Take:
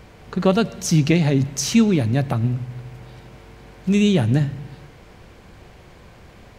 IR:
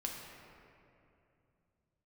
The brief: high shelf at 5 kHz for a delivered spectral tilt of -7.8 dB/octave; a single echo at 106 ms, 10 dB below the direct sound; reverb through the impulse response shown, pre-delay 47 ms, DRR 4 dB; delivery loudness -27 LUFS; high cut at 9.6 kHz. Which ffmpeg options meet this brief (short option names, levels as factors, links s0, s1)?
-filter_complex "[0:a]lowpass=9600,highshelf=f=5000:g=-4,aecho=1:1:106:0.316,asplit=2[s0][s1];[1:a]atrim=start_sample=2205,adelay=47[s2];[s1][s2]afir=irnorm=-1:irlink=0,volume=0.596[s3];[s0][s3]amix=inputs=2:normalize=0,volume=0.355"